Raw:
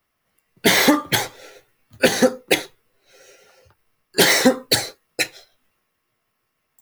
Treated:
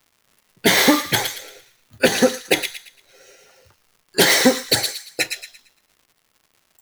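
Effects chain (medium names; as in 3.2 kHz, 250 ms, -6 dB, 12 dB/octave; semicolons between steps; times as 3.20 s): feedback echo behind a high-pass 114 ms, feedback 33%, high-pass 2.2 kHz, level -5 dB; crackle 210 per s -44 dBFS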